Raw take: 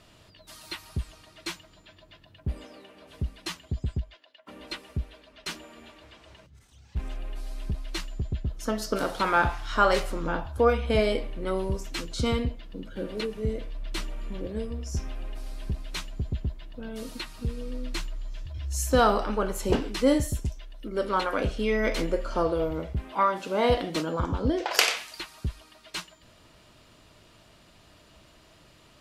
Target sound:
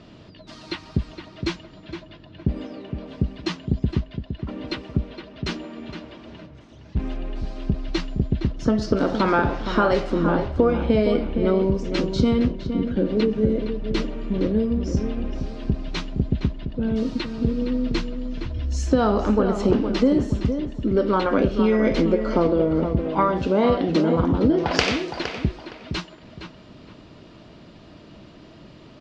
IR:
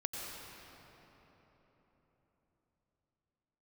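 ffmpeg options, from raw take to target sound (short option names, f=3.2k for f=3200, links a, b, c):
-filter_complex "[0:a]lowpass=f=5.6k:w=0.5412,lowpass=f=5.6k:w=1.3066,equalizer=f=240:w=0.57:g=12.5,acompressor=threshold=-19dB:ratio=6,asplit=2[a][b];[b]adelay=464,lowpass=f=2.7k:p=1,volume=-8dB,asplit=2[c][d];[d]adelay=464,lowpass=f=2.7k:p=1,volume=0.28,asplit=2[e][f];[f]adelay=464,lowpass=f=2.7k:p=1,volume=0.28[g];[a][c][e][g]amix=inputs=4:normalize=0,volume=3.5dB"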